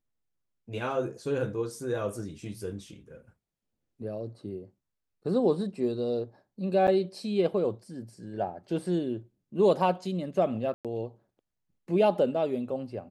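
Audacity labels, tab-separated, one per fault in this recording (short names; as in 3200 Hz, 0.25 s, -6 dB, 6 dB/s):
6.870000	6.880000	gap 8.2 ms
10.740000	10.850000	gap 0.107 s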